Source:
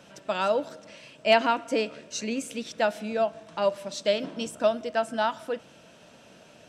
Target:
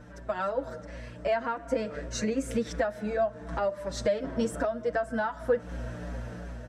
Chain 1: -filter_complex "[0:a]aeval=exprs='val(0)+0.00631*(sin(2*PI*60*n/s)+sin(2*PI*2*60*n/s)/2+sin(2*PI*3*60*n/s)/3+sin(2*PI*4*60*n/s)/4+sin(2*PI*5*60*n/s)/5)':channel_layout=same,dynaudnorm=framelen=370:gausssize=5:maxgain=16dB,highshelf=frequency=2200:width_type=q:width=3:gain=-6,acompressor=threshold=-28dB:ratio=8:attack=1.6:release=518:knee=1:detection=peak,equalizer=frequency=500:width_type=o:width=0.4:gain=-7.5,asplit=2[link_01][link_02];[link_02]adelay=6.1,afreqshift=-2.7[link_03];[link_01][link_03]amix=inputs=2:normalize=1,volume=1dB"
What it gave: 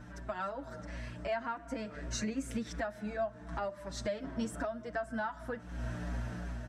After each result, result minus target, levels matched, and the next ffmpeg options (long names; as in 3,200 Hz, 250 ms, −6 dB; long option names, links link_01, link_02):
downward compressor: peak gain reduction +5 dB; 500 Hz band −2.5 dB
-filter_complex "[0:a]aeval=exprs='val(0)+0.00631*(sin(2*PI*60*n/s)+sin(2*PI*2*60*n/s)/2+sin(2*PI*3*60*n/s)/3+sin(2*PI*4*60*n/s)/4+sin(2*PI*5*60*n/s)/5)':channel_layout=same,dynaudnorm=framelen=370:gausssize=5:maxgain=16dB,highshelf=frequency=2200:width_type=q:width=3:gain=-6,acompressor=threshold=-22dB:ratio=8:attack=1.6:release=518:knee=1:detection=peak,equalizer=frequency=500:width_type=o:width=0.4:gain=-7.5,asplit=2[link_01][link_02];[link_02]adelay=6.1,afreqshift=-2.7[link_03];[link_01][link_03]amix=inputs=2:normalize=1,volume=1dB"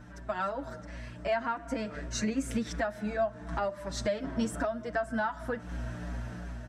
500 Hz band −2.5 dB
-filter_complex "[0:a]aeval=exprs='val(0)+0.00631*(sin(2*PI*60*n/s)+sin(2*PI*2*60*n/s)/2+sin(2*PI*3*60*n/s)/3+sin(2*PI*4*60*n/s)/4+sin(2*PI*5*60*n/s)/5)':channel_layout=same,dynaudnorm=framelen=370:gausssize=5:maxgain=16dB,highshelf=frequency=2200:width_type=q:width=3:gain=-6,acompressor=threshold=-22dB:ratio=8:attack=1.6:release=518:knee=1:detection=peak,equalizer=frequency=500:width_type=o:width=0.4:gain=4.5,asplit=2[link_01][link_02];[link_02]adelay=6.1,afreqshift=-2.7[link_03];[link_01][link_03]amix=inputs=2:normalize=1,volume=1dB"